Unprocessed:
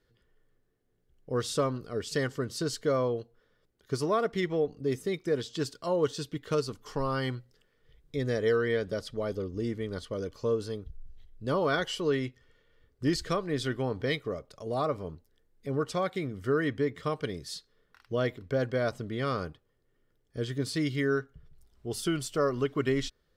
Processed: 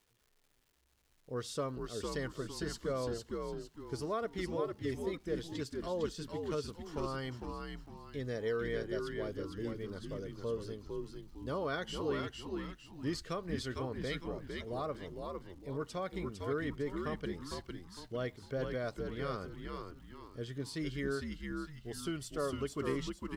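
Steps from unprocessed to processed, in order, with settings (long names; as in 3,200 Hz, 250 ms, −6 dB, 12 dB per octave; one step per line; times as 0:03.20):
echo with shifted repeats 455 ms, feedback 37%, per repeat −82 Hz, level −4 dB
surface crackle 460 per second −51 dBFS
level −9 dB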